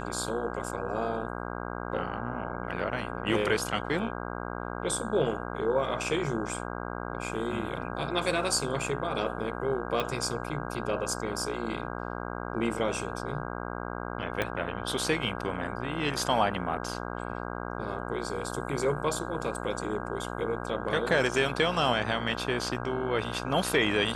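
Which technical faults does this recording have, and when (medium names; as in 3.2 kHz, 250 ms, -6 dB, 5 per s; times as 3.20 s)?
buzz 60 Hz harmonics 27 -36 dBFS
10.00 s: pop -16 dBFS
14.42 s: pop -14 dBFS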